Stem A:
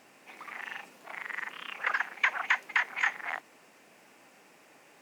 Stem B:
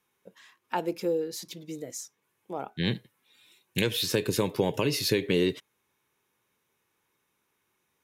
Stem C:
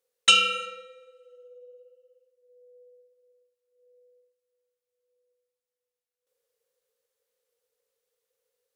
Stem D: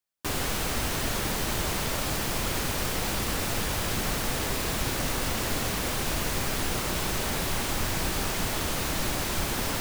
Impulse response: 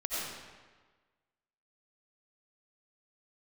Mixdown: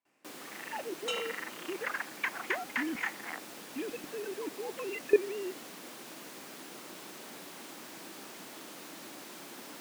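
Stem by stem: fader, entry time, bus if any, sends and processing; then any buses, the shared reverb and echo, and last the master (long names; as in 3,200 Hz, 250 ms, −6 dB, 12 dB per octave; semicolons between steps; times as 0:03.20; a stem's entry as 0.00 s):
−16.5 dB, 0.00 s, no send, automatic gain control gain up to 12.5 dB; noise gate with hold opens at −47 dBFS
+1.5 dB, 0.00 s, no send, three sine waves on the formant tracks; output level in coarse steps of 20 dB
−19.5 dB, 0.80 s, no send, no processing
−17.0 dB, 0.00 s, no send, high-pass filter 200 Hz 24 dB per octave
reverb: not used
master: parametric band 310 Hz +5 dB 0.37 octaves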